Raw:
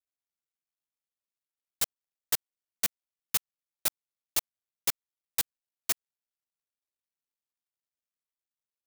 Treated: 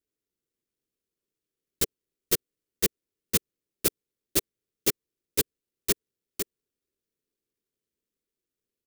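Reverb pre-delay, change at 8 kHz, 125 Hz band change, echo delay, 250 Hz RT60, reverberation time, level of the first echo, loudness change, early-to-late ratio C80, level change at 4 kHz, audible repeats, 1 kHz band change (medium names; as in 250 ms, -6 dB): no reverb, +3.0 dB, +13.5 dB, 501 ms, no reverb, no reverb, -6.0 dB, +3.0 dB, no reverb, +3.0 dB, 1, -1.0 dB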